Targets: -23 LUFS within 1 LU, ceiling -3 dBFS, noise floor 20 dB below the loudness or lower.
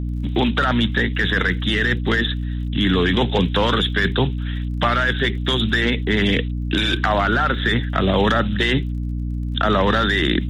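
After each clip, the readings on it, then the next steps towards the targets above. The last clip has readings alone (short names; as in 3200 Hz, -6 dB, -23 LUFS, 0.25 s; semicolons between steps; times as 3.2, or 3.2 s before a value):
ticks 32/s; hum 60 Hz; harmonics up to 300 Hz; hum level -22 dBFS; loudness -19.5 LUFS; peak -4.5 dBFS; loudness target -23.0 LUFS
-> de-click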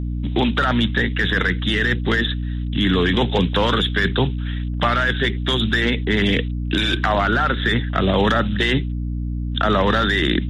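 ticks 0.095/s; hum 60 Hz; harmonics up to 300 Hz; hum level -22 dBFS
-> de-hum 60 Hz, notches 5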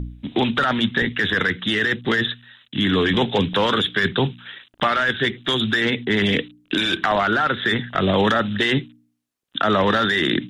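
hum none; loudness -20.0 LUFS; peak -6.0 dBFS; loudness target -23.0 LUFS
-> gain -3 dB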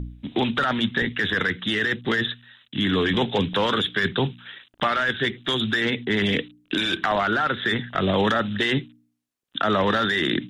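loudness -23.0 LUFS; peak -9.0 dBFS; noise floor -70 dBFS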